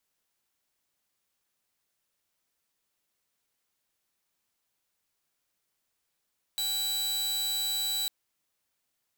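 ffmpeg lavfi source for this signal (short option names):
-f lavfi -i "aevalsrc='0.0531*(2*mod(3940*t,1)-1)':d=1.5:s=44100"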